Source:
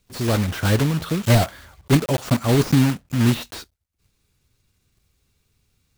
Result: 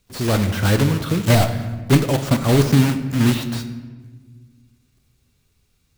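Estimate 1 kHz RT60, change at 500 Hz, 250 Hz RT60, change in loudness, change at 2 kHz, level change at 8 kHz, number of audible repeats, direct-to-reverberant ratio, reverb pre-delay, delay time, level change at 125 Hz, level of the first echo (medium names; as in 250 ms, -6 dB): 1.2 s, +2.0 dB, 2.3 s, +1.5 dB, +2.0 dB, +2.0 dB, no echo, 9.0 dB, 20 ms, no echo, +2.0 dB, no echo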